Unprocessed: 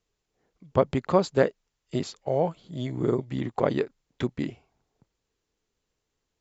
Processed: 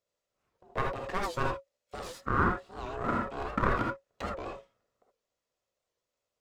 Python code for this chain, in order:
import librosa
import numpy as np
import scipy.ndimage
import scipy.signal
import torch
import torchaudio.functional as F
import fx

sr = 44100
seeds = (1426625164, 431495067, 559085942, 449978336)

y = fx.lower_of_two(x, sr, delay_ms=1.5)
y = fx.peak_eq(y, sr, hz=920.0, db=10.0, octaves=1.2, at=(2.07, 4.31))
y = y * np.sin(2.0 * np.pi * 550.0 * np.arange(len(y)) / sr)
y = fx.rev_gated(y, sr, seeds[0], gate_ms=100, shape='rising', drr_db=0.0)
y = fx.record_warp(y, sr, rpm=78.0, depth_cents=160.0)
y = F.gain(torch.from_numpy(y), -4.5).numpy()